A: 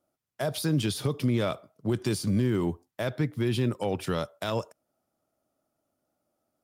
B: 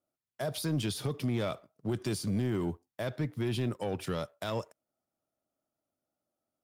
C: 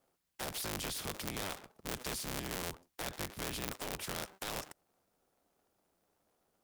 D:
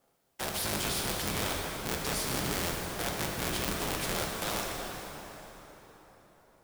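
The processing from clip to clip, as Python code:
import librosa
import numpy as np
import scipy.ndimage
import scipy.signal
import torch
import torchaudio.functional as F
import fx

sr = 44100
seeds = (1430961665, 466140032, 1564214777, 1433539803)

y1 = fx.leveller(x, sr, passes=1)
y1 = F.gain(torch.from_numpy(y1), -7.5).numpy()
y2 = fx.cycle_switch(y1, sr, every=3, mode='inverted')
y2 = fx.spectral_comp(y2, sr, ratio=2.0)
y2 = F.gain(torch.from_numpy(y2), 4.5).numpy()
y3 = fx.rev_plate(y2, sr, seeds[0], rt60_s=4.3, hf_ratio=0.7, predelay_ms=0, drr_db=-1.5)
y3 = F.gain(torch.from_numpy(y3), 4.5).numpy()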